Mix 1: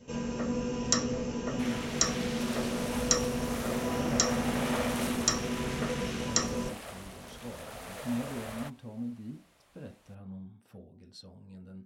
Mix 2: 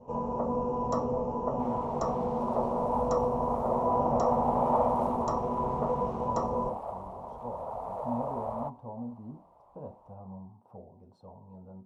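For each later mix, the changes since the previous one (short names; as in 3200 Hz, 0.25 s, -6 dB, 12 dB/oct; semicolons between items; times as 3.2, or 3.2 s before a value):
master: add EQ curve 120 Hz 0 dB, 300 Hz -3 dB, 960 Hz +15 dB, 1600 Hz -20 dB, 3200 Hz -24 dB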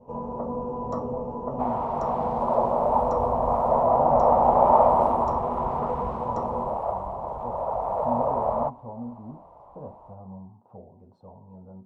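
speech +3.0 dB; second sound +11.0 dB; master: add high shelf 3000 Hz -12 dB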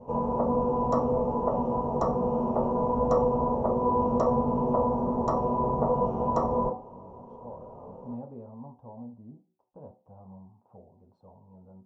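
speech -6.5 dB; first sound +5.0 dB; second sound: muted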